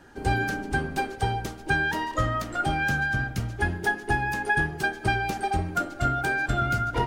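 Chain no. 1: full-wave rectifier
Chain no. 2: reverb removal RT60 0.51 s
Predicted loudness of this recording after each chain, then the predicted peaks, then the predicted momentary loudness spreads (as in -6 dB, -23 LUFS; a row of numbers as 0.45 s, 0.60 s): -30.5 LUFS, -27.5 LUFS; -11.5 dBFS, -11.5 dBFS; 4 LU, 4 LU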